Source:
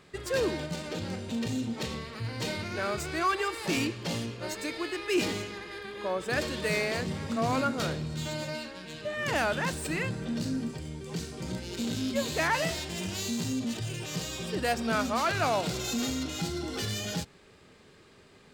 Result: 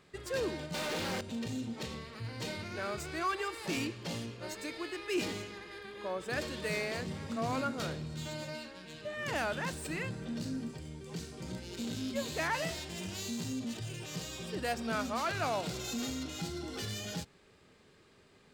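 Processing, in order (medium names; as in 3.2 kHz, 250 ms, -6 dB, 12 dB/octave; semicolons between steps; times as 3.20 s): 0.74–1.21 s: overdrive pedal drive 37 dB, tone 4.3 kHz, clips at -23 dBFS; trim -6 dB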